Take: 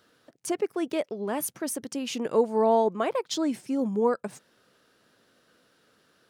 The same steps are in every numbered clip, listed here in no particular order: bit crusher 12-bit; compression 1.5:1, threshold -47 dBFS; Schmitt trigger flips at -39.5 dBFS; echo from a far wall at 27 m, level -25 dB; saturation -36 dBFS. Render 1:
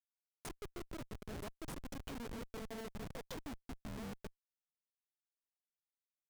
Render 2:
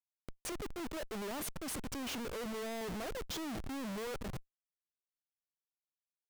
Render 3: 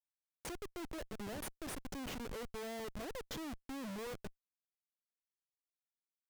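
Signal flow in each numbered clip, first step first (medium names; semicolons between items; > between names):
saturation > compression > bit crusher > echo from a far wall > Schmitt trigger; echo from a far wall > bit crusher > Schmitt trigger > saturation > compression; bit crusher > compression > echo from a far wall > saturation > Schmitt trigger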